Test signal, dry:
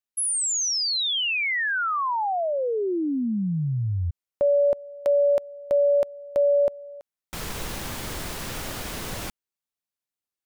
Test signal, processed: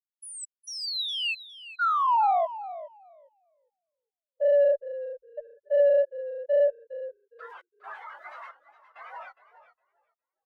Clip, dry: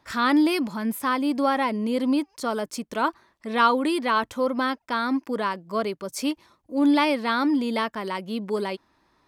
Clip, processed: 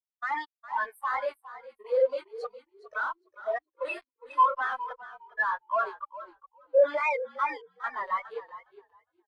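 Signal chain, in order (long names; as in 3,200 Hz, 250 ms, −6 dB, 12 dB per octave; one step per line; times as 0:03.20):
spectral magnitudes quantised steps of 30 dB
high-pass filter 600 Hz 24 dB per octave
parametric band 1,600 Hz +9.5 dB 2.8 octaves
chorus effect 2.4 Hz, delay 18.5 ms, depth 6.8 ms
in parallel at −7 dB: log-companded quantiser 4 bits
on the sum: fuzz pedal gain 37 dB, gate −38 dBFS
gate pattern ".x.xxx..xxx..xxx" 67 BPM −60 dB
on a send: echo with shifted repeats 410 ms, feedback 47%, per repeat −53 Hz, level −6 dB
on the sum: every bin expanded away from the loudest bin 2.5 to 1
level −7.5 dB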